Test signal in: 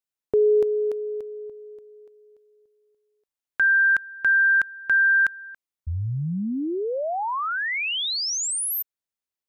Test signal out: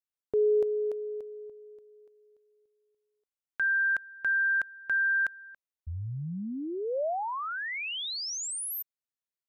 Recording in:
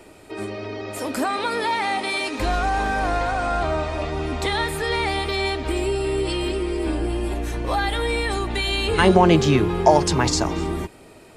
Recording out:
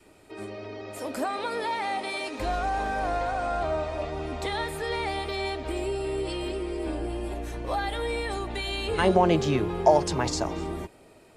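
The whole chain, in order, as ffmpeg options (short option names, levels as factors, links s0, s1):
-af "adynamicequalizer=threshold=0.0178:dfrequency=600:dqfactor=1.6:tfrequency=600:tqfactor=1.6:attack=5:release=100:ratio=0.375:range=3:mode=boostabove:tftype=bell,volume=0.376"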